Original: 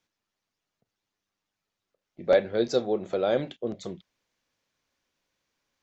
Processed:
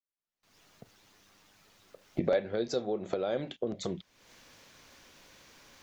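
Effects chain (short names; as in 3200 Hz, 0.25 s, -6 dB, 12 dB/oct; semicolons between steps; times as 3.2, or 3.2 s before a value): recorder AGC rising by 52 dB/s; gate with hold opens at -54 dBFS; gain -7.5 dB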